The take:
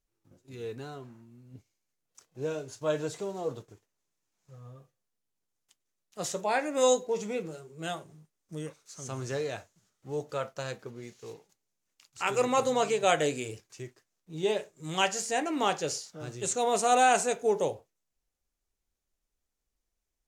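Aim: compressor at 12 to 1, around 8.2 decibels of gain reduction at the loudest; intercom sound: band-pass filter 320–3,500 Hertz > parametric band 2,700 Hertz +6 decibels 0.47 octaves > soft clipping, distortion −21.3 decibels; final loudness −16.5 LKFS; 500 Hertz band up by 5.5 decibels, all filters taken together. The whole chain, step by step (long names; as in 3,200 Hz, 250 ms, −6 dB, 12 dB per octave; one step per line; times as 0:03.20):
parametric band 500 Hz +7 dB
downward compressor 12 to 1, threshold −21 dBFS
band-pass filter 320–3,500 Hz
parametric band 2,700 Hz +6 dB 0.47 octaves
soft clipping −17.5 dBFS
level +15 dB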